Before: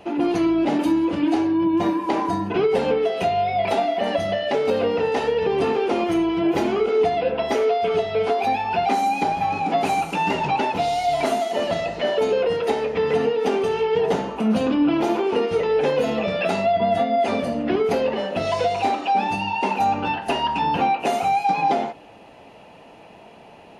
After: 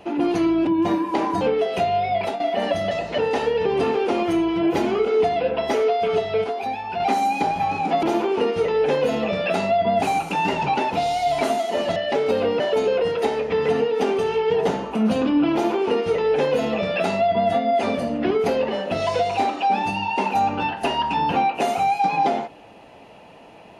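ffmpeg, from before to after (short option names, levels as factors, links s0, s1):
-filter_complex "[0:a]asplit=12[s0][s1][s2][s3][s4][s5][s6][s7][s8][s9][s10][s11];[s0]atrim=end=0.672[s12];[s1]atrim=start=1.618:end=2.362[s13];[s2]atrim=start=2.848:end=3.84,asetpts=PTS-STARTPTS,afade=t=out:st=0.662:d=0.33:c=qsin:silence=0.237137[s14];[s3]atrim=start=3.84:end=4.352,asetpts=PTS-STARTPTS,afade=t=in:d=0.004:c=hsin:silence=0.237137[s15];[s4]atrim=start=11.778:end=12.052[s16];[s5]atrim=start=4.988:end=8.252[s17];[s6]atrim=start=8.248:end=8.812,asetpts=PTS-STARTPTS,volume=0.531[s18];[s7]atrim=start=8.808:end=9.842[s19];[s8]atrim=start=14.978:end=16.972[s20];[s9]atrim=start=9.838:end=11.782[s21];[s10]atrim=start=4.348:end=4.992[s22];[s11]atrim=start=12.048[s23];[s12][s13]acrossfade=d=0.004:c1=hsin:c2=hsin[s24];[s14][s15]concat=n=2:v=0:a=1[s25];[s24][s25]acrossfade=d=0.004:c1=hsin:c2=hsin[s26];[s26][s16]acrossfade=d=0.004:c1=hsin:c2=hsin[s27];[s27][s17]acrossfade=d=0.004:c1=hsin:c2=hsin[s28];[s28][s18]acrossfade=d=0.004:c1=hsin:c2=hsin[s29];[s29][s19]acrossfade=d=0.004:c1=hsin:c2=hsin[s30];[s30][s20]acrossfade=d=0.004:c1=hsin:c2=hsin[s31];[s31][s21]acrossfade=d=0.004:c1=hsin:c2=hsin[s32];[s32][s22]acrossfade=d=0.004:c1=hsin:c2=hsin[s33];[s33][s23]acrossfade=d=0.004:c1=hsin:c2=hsin"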